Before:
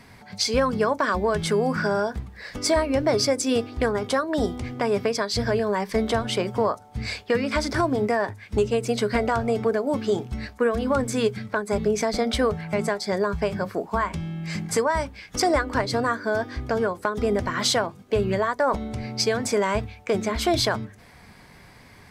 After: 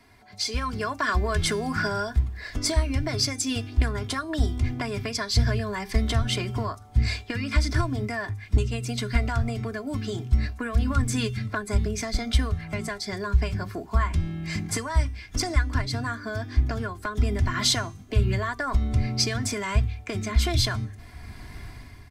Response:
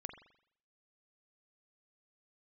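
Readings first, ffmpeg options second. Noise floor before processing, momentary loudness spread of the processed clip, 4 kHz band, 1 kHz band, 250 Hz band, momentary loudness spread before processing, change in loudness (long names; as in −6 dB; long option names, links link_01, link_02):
−49 dBFS, 7 LU, 0.0 dB, −6.0 dB, −4.0 dB, 6 LU, −2.0 dB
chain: -filter_complex "[0:a]acrossover=split=180|1300[link_01][link_02][link_03];[link_02]acompressor=threshold=-32dB:ratio=5[link_04];[link_01][link_04][link_03]amix=inputs=3:normalize=0,aecho=1:1:2.9:0.63,asubboost=boost=3.5:cutoff=210,bandreject=frequency=392:width_type=h:width=4,bandreject=frequency=784:width_type=h:width=4,bandreject=frequency=1176:width_type=h:width=4,bandreject=frequency=1568:width_type=h:width=4,bandreject=frequency=1960:width_type=h:width=4,bandreject=frequency=2352:width_type=h:width=4,bandreject=frequency=2744:width_type=h:width=4,bandreject=frequency=3136:width_type=h:width=4,bandreject=frequency=3528:width_type=h:width=4,bandreject=frequency=3920:width_type=h:width=4,bandreject=frequency=4312:width_type=h:width=4,bandreject=frequency=4704:width_type=h:width=4,bandreject=frequency=5096:width_type=h:width=4,bandreject=frequency=5488:width_type=h:width=4,bandreject=frequency=5880:width_type=h:width=4,bandreject=frequency=6272:width_type=h:width=4,bandreject=frequency=6664:width_type=h:width=4,bandreject=frequency=7056:width_type=h:width=4,bandreject=frequency=7448:width_type=h:width=4,bandreject=frequency=7840:width_type=h:width=4,bandreject=frequency=8232:width_type=h:width=4,bandreject=frequency=8624:width_type=h:width=4,bandreject=frequency=9016:width_type=h:width=4,bandreject=frequency=9408:width_type=h:width=4,bandreject=frequency=9800:width_type=h:width=4,bandreject=frequency=10192:width_type=h:width=4,bandreject=frequency=10584:width_type=h:width=4,bandreject=frequency=10976:width_type=h:width=4,bandreject=frequency=11368:width_type=h:width=4,bandreject=frequency=11760:width_type=h:width=4,dynaudnorm=framelen=160:gausssize=7:maxgain=12dB,volume=-8.5dB"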